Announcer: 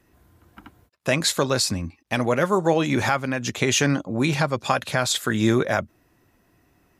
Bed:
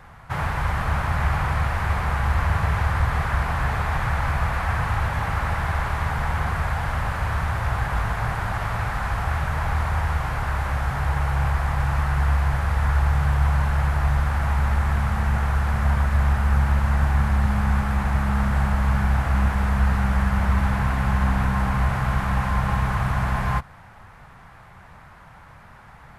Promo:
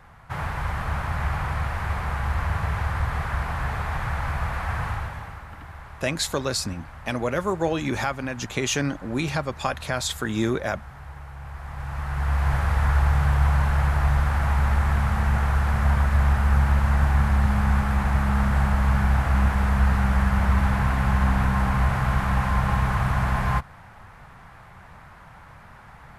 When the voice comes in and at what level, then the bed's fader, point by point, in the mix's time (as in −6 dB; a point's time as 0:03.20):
4.95 s, −4.5 dB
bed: 0:04.88 −4 dB
0:05.47 −17 dB
0:11.40 −17 dB
0:12.52 0 dB